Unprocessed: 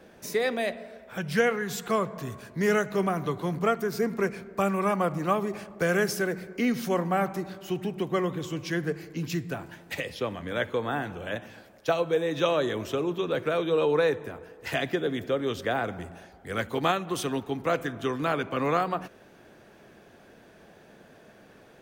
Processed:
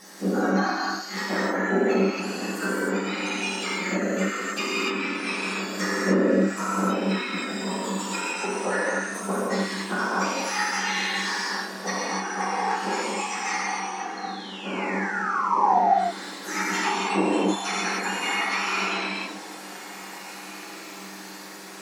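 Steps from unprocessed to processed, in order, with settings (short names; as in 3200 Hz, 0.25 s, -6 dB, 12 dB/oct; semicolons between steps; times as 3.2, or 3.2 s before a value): spectrum mirrored in octaves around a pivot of 1700 Hz; in parallel at -1 dB: compressor, threshold -43 dBFS, peak gain reduction 19 dB; on the sum: painted sound fall, 14.17–15.81, 680–4300 Hz -25 dBFS; treble ducked by the level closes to 670 Hz, closed at -23.5 dBFS; on a send: diffused feedback echo 1.794 s, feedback 43%, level -16 dB; on the sum: non-linear reverb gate 0.33 s flat, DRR -7.5 dB; gain +3 dB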